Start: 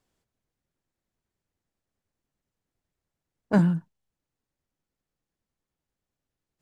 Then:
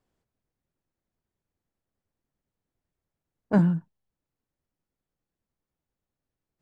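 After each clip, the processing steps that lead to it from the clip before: treble shelf 2.3 kHz -8.5 dB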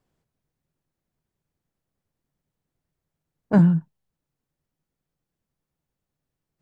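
peaking EQ 150 Hz +7 dB 0.38 oct; trim +2.5 dB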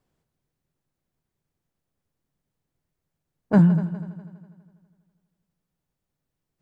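multi-head delay 82 ms, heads second and third, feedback 46%, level -15.5 dB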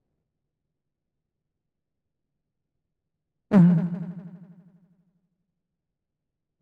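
median filter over 41 samples

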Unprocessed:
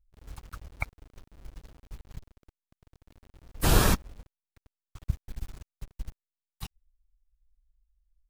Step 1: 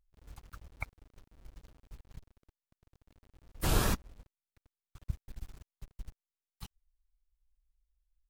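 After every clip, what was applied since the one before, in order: vibrato with a chosen wave saw up 3 Hz, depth 100 cents; trim -7 dB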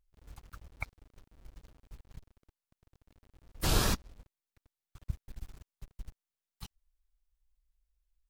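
dynamic bell 4.7 kHz, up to +6 dB, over -56 dBFS, Q 1.1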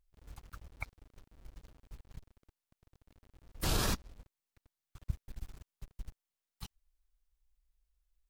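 peak limiter -21 dBFS, peak gain reduction 8 dB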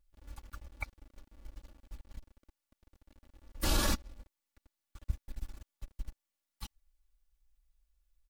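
comb 3.5 ms, depth 73%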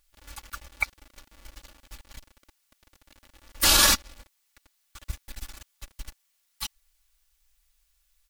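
tilt shelf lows -8.5 dB, about 740 Hz; trim +8.5 dB

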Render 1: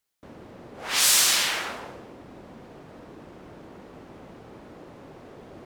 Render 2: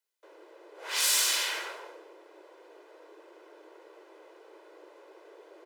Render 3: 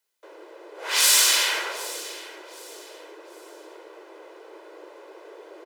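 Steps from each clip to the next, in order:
Chebyshev high-pass 310 Hz, order 10; comb 2 ms, depth 47%; trim -6.5 dB
feedback delay 766 ms, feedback 32%, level -17.5 dB; trim +8 dB

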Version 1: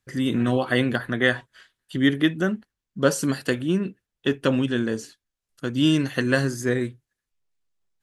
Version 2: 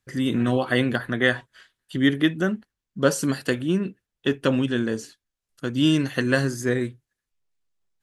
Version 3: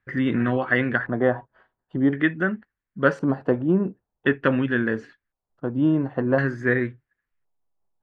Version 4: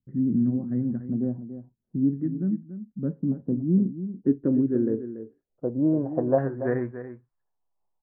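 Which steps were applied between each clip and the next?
no audible change
LFO low-pass square 0.47 Hz 850–1800 Hz; gain riding within 3 dB 0.5 s
low-pass sweep 220 Hz -> 960 Hz, 3.64–7.03 s; delay 285 ms -11.5 dB; trim -5 dB

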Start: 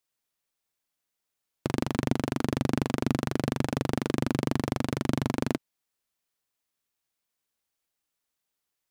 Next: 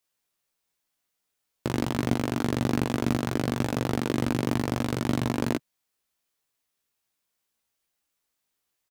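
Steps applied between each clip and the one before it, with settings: in parallel at -12 dB: integer overflow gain 25 dB; on the sum: doubling 17 ms -4 dB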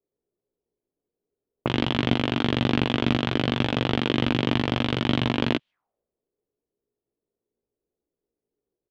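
touch-sensitive low-pass 410–3200 Hz up, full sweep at -29 dBFS; trim +2.5 dB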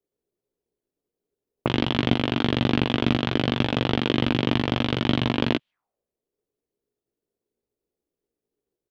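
transient shaper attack +2 dB, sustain -2 dB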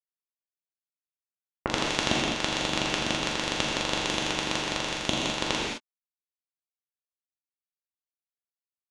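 power-law waveshaper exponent 3; gated-style reverb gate 240 ms flat, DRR -3.5 dB; trim +2 dB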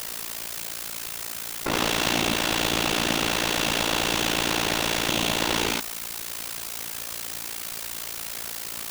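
jump at every zero crossing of -18 dBFS; AM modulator 57 Hz, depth 80%

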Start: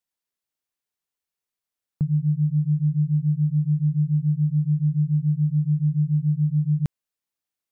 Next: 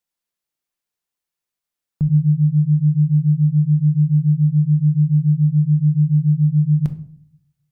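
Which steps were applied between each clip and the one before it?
simulated room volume 630 m³, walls furnished, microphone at 0.82 m; trim +2 dB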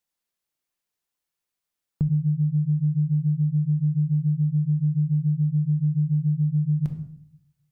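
de-hum 236.4 Hz, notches 39; compression 6:1, threshold -20 dBFS, peak gain reduction 9 dB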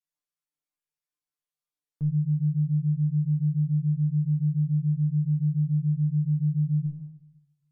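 low-pass that closes with the level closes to 390 Hz, closed at -22 dBFS; feedback comb 150 Hz, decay 0.24 s, harmonics all, mix 100%

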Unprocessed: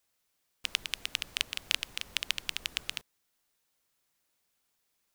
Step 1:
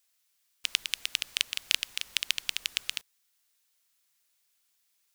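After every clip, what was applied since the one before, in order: tilt shelf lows -8 dB, about 1.1 kHz; trim -3 dB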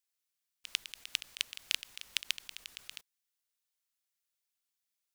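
level held to a coarse grid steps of 14 dB; trim -3 dB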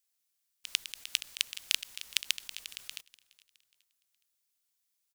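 treble shelf 3.5 kHz +7 dB; feedback delay 417 ms, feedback 42%, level -22.5 dB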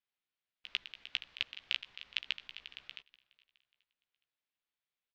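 low-pass 3.4 kHz 24 dB/octave; doubling 15 ms -8 dB; trim -2.5 dB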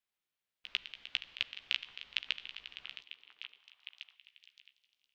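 repeats whose band climbs or falls 568 ms, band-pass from 380 Hz, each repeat 1.4 oct, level -7 dB; Schroeder reverb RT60 1.9 s, combs from 32 ms, DRR 20 dB; trim +1 dB

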